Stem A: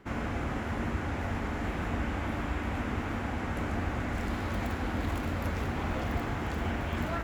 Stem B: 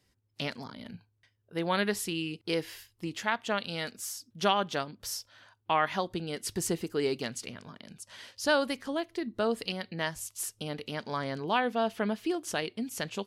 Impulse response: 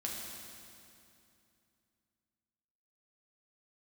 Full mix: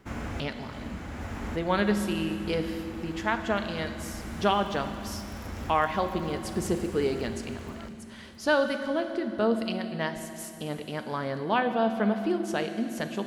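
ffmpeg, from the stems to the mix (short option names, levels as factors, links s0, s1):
-filter_complex "[0:a]bass=f=250:g=2,treble=f=4000:g=7,volume=0.668,asplit=3[s0][s1][s2];[s1]volume=0.141[s3];[s2]volume=0.335[s4];[1:a]highshelf=f=3000:g=-10,volume=0.944,asplit=3[s5][s6][s7];[s6]volume=0.708[s8];[s7]apad=whole_len=319196[s9];[s0][s9]sidechaincompress=threshold=0.00631:ratio=8:attack=20:release=982[s10];[2:a]atrim=start_sample=2205[s11];[s3][s8]amix=inputs=2:normalize=0[s12];[s12][s11]afir=irnorm=-1:irlink=0[s13];[s4]aecho=0:1:662|1324|1986|2648:1|0.26|0.0676|0.0176[s14];[s10][s5][s13][s14]amix=inputs=4:normalize=0"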